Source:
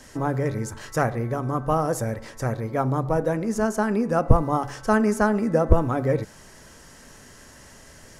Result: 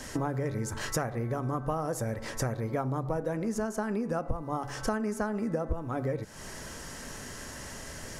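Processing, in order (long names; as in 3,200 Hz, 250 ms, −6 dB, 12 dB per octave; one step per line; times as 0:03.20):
downward compressor 8 to 1, threshold −34 dBFS, peak gain reduction 24 dB
level +5.5 dB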